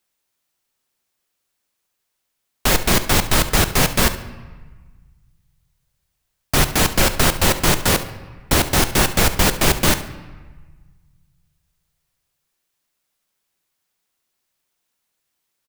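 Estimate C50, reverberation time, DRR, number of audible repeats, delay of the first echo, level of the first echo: 11.5 dB, 1.4 s, 9.5 dB, 1, 70 ms, -15.5 dB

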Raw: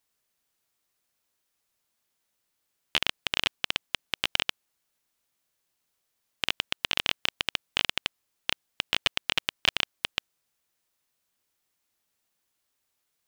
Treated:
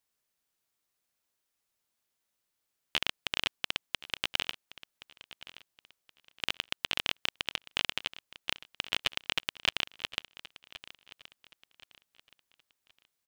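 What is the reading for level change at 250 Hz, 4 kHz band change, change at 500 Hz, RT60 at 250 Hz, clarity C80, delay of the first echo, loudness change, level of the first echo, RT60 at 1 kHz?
-4.5 dB, -4.5 dB, -4.5 dB, none, none, 1.073 s, -4.5 dB, -17.0 dB, none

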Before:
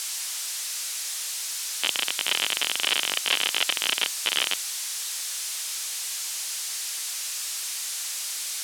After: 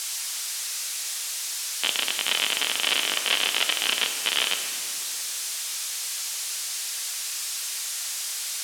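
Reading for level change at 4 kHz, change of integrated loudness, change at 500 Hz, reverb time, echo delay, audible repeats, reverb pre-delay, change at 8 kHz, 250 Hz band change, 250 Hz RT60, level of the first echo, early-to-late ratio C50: +1.0 dB, +1.0 dB, +2.0 dB, 2.6 s, none, none, 4 ms, +0.5 dB, +2.0 dB, 3.2 s, none, 6.5 dB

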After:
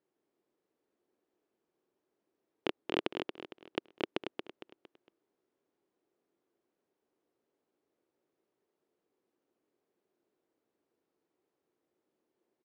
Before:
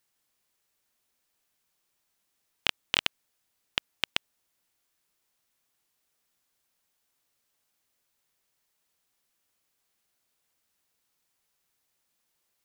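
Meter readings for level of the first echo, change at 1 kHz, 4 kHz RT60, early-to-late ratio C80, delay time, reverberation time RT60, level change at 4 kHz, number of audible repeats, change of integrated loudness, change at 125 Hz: -6.0 dB, -2.5 dB, none, none, 0.229 s, none, -14.0 dB, 4, -8.5 dB, -2.0 dB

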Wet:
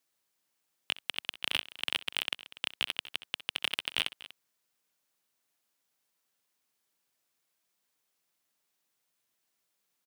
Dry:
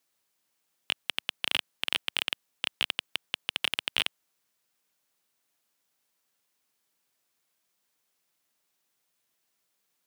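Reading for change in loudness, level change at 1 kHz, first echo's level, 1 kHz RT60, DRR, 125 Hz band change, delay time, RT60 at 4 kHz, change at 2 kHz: -3.0 dB, -3.0 dB, -18.5 dB, none, none, -3.0 dB, 64 ms, none, -3.0 dB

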